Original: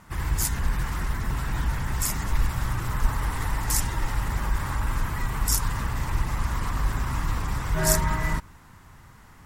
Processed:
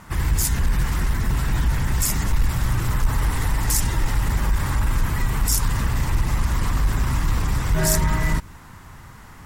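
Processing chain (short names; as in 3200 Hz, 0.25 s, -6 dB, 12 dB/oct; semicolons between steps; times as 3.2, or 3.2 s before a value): dynamic EQ 1100 Hz, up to -5 dB, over -42 dBFS, Q 0.81; in parallel at +2.5 dB: limiter -18 dBFS, peak gain reduction 11.5 dB; on the sum: soft clip -9.5 dBFS, distortion -22 dB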